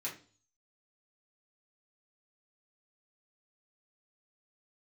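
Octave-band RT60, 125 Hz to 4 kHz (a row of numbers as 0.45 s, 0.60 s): 0.65 s, 0.50 s, 0.45 s, 0.35 s, 0.35 s, 0.45 s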